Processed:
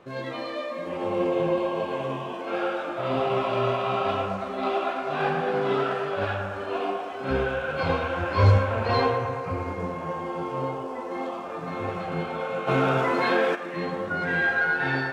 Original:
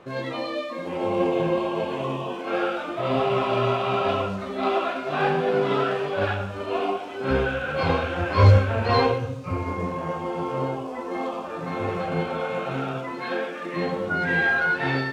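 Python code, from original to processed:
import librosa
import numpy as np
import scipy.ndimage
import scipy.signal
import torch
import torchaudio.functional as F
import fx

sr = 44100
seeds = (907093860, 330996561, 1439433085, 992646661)

y = fx.echo_wet_bandpass(x, sr, ms=112, feedback_pct=75, hz=1000.0, wet_db=-6.0)
y = fx.env_flatten(y, sr, amount_pct=50, at=(12.67, 13.54), fade=0.02)
y = y * librosa.db_to_amplitude(-3.5)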